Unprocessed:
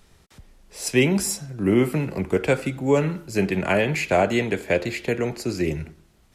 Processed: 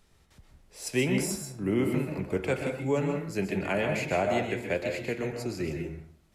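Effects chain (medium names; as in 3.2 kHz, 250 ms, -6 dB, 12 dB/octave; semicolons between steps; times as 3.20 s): plate-style reverb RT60 0.51 s, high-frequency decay 0.5×, pre-delay 115 ms, DRR 3.5 dB; trim -8.5 dB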